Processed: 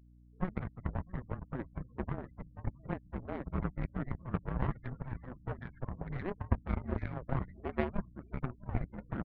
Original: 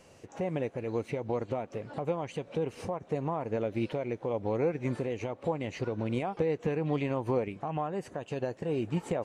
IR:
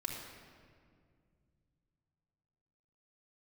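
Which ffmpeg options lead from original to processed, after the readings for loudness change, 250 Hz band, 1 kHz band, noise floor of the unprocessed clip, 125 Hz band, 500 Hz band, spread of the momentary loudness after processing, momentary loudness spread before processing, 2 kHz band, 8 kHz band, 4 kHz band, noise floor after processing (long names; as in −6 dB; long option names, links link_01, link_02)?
−6.5 dB, −5.5 dB, −7.0 dB, −57 dBFS, −1.5 dB, −13.0 dB, 7 LU, 5 LU, −4.0 dB, can't be measured, below −10 dB, −60 dBFS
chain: -filter_complex "[0:a]acompressor=threshold=-37dB:ratio=2,asoftclip=type=hard:threshold=-36.5dB,acrusher=bits=3:mode=log:mix=0:aa=0.000001,asoftclip=type=tanh:threshold=-37dB,bandreject=frequency=161.9:width_type=h:width=4,bandreject=frequency=323.8:width_type=h:width=4,bandreject=frequency=485.7:width_type=h:width=4,bandreject=frequency=647.6:width_type=h:width=4,agate=range=-20dB:threshold=-42dB:ratio=16:detection=peak,asplit=2[link_01][link_02];[link_02]aecho=0:1:659|1318|1977|2636|3295:0.188|0.0923|0.0452|0.0222|0.0109[link_03];[link_01][link_03]amix=inputs=2:normalize=0,highpass=frequency=190:width_type=q:width=0.5412,highpass=frequency=190:width_type=q:width=1.307,lowpass=frequency=2700:width_type=q:width=0.5176,lowpass=frequency=2700:width_type=q:width=0.7071,lowpass=frequency=2700:width_type=q:width=1.932,afreqshift=-380,afftfilt=real='re*gte(hypot(re,im),0.002)':imag='im*gte(hypot(re,im),0.002)':win_size=1024:overlap=0.75,aeval=exprs='val(0)+0.00112*(sin(2*PI*60*n/s)+sin(2*PI*2*60*n/s)/2+sin(2*PI*3*60*n/s)/3+sin(2*PI*4*60*n/s)/4+sin(2*PI*5*60*n/s)/5)':channel_layout=same,aeval=exprs='0.0266*(cos(1*acos(clip(val(0)/0.0266,-1,1)))-cos(1*PI/2))+0.0075*(cos(3*acos(clip(val(0)/0.0266,-1,1)))-cos(3*PI/2))':channel_layout=same,volume=17dB"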